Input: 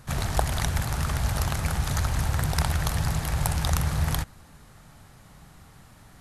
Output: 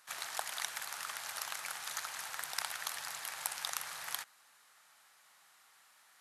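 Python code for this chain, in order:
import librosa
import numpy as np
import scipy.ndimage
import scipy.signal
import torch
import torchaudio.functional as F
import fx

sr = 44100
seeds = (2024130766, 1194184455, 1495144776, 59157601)

y = scipy.signal.sosfilt(scipy.signal.butter(2, 1200.0, 'highpass', fs=sr, output='sos'), x)
y = y * 10.0 ** (-6.0 / 20.0)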